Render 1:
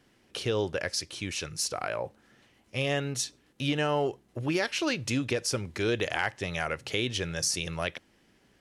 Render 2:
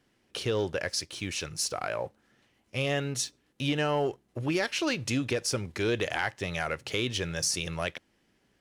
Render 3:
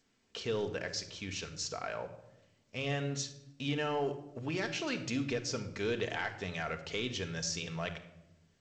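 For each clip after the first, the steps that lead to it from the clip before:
waveshaping leveller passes 1; trim -3.5 dB
reverberation RT60 0.90 s, pre-delay 4 ms, DRR 5.5 dB; trim -7 dB; G.722 64 kbps 16 kHz

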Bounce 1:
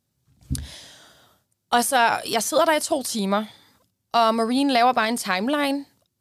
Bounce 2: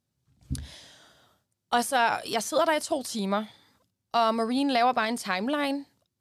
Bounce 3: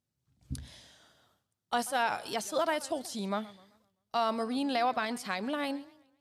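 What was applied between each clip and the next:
treble shelf 9.5 kHz -7.5 dB; trim -5 dB
modulated delay 129 ms, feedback 40%, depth 210 cents, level -20 dB; trim -6 dB

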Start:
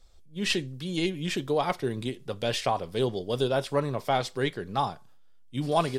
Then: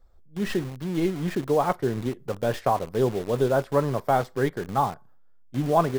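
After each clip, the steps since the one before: high-order bell 5.1 kHz -15.5 dB 2.6 oct; in parallel at -4.5 dB: bit crusher 6-bit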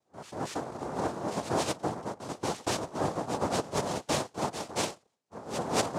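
reverse echo 230 ms -9.5 dB; noise-vocoded speech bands 2; trim -8 dB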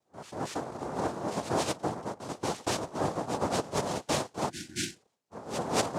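spectral replace 4.52–5.00 s, 370–1400 Hz after

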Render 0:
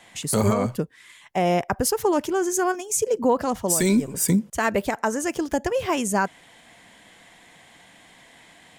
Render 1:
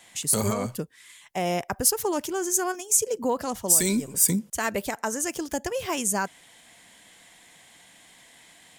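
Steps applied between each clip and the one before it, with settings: treble shelf 3.9 kHz +12 dB; trim -6 dB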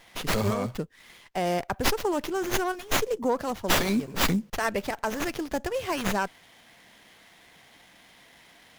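sliding maximum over 5 samples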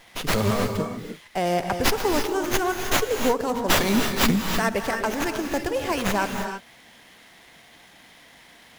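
gated-style reverb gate 350 ms rising, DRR 5 dB; trim +3 dB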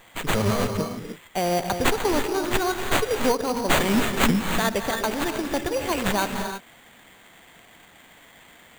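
sample-rate reducer 5.3 kHz, jitter 0%

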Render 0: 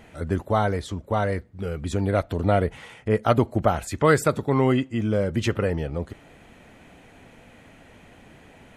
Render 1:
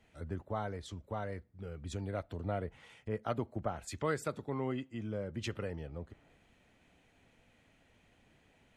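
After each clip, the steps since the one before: treble shelf 11 kHz -12 dB; compression 2:1, threshold -38 dBFS, peak gain reduction 13.5 dB; three bands expanded up and down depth 70%; trim -5.5 dB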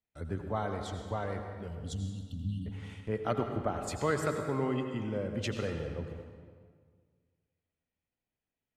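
gate -59 dBFS, range -31 dB; spectral selection erased 1.68–2.67 s, 290–2700 Hz; reverberation RT60 1.8 s, pre-delay 79 ms, DRR 4.5 dB; trim +3.5 dB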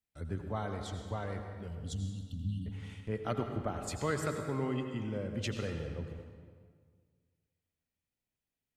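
peaking EQ 710 Hz -4.5 dB 2.9 oct

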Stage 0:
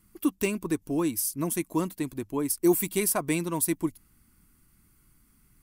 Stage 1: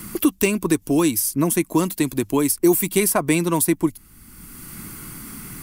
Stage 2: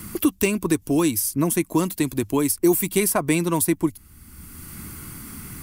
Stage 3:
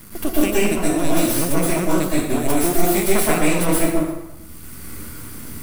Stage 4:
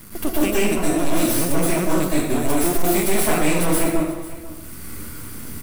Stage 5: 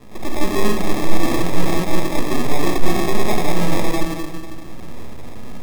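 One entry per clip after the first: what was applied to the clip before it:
three bands compressed up and down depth 70%; trim +8.5 dB
peaking EQ 81 Hz +11 dB 0.6 oct; trim -2 dB
half-wave rectifier; plate-style reverb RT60 0.94 s, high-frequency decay 0.75×, pre-delay 105 ms, DRR -7 dB; trim -1 dB
overload inside the chain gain 12 dB; delay 495 ms -17 dB
simulated room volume 990 m³, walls mixed, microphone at 1.2 m; sample-and-hold 30×; trim -3 dB

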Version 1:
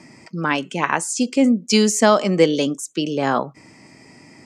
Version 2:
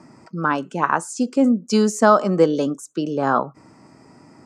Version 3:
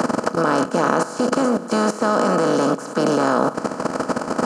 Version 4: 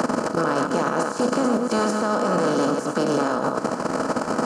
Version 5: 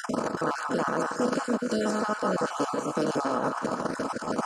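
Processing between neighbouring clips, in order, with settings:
resonant high shelf 1.7 kHz -6.5 dB, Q 3; band-stop 3.2 kHz, Q 20; trim -1 dB
spectral levelling over time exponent 0.2; level held to a coarse grid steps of 14 dB; trim -3.5 dB
chunks repeated in reverse 112 ms, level -6.5 dB; peak limiter -12 dBFS, peak gain reduction 10 dB
random holes in the spectrogram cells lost 28%; repeats whose band climbs or falls 166 ms, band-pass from 1.2 kHz, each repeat 0.7 oct, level -4.5 dB; endings held to a fixed fall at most 400 dB/s; trim -4.5 dB

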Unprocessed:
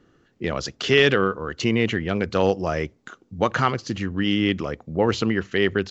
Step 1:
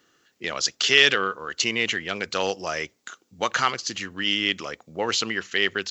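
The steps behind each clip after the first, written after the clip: tilt EQ +4.5 dB/octave; trim -2 dB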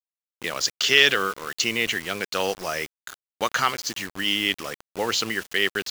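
bit crusher 6-bit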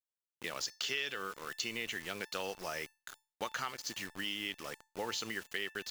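compression 5:1, threshold -24 dBFS, peak gain reduction 12.5 dB; feedback comb 890 Hz, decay 0.33 s, mix 70%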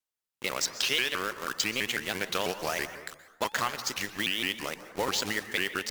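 in parallel at -3 dB: bit crusher 6-bit; on the sum: plate-style reverb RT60 1.1 s, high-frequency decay 0.45×, pre-delay 110 ms, DRR 11 dB; vibrato with a chosen wave saw up 6.1 Hz, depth 250 cents; trim +4 dB

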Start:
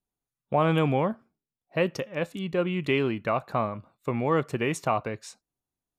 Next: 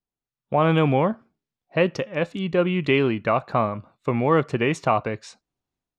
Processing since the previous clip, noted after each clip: low-pass 5.3 kHz 12 dB/octave; level rider gain up to 9.5 dB; trim -3.5 dB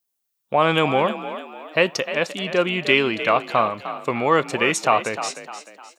RIAA curve recording; frequency-shifting echo 304 ms, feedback 41%, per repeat +45 Hz, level -11.5 dB; trim +3.5 dB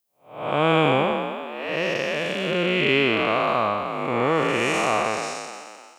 spectral blur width 299 ms; trim +3 dB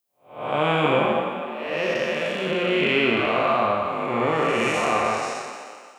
reverberation RT60 1.3 s, pre-delay 6 ms, DRR 1 dB; trim -2.5 dB

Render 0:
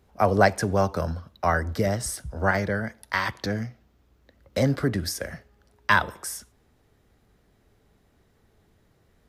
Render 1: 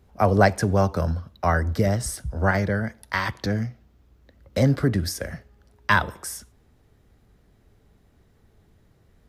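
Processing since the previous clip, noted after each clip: bass shelf 220 Hz +6.5 dB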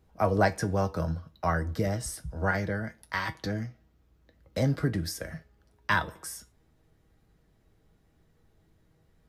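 feedback comb 160 Hz, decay 0.16 s, harmonics all, mix 70%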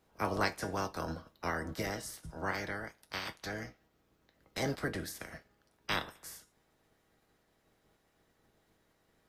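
spectral peaks clipped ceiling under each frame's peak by 20 dB; trim -8 dB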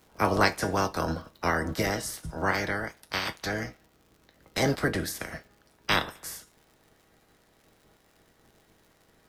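crackle 100 per s -57 dBFS; trim +9 dB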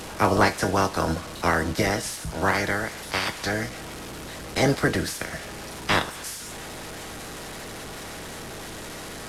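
one-bit delta coder 64 kbps, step -35.5 dBFS; trim +4.5 dB

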